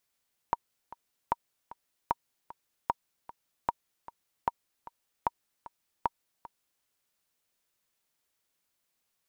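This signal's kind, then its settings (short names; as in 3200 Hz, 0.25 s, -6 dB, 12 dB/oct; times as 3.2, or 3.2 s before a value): metronome 152 bpm, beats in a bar 2, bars 8, 942 Hz, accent 18 dB -12.5 dBFS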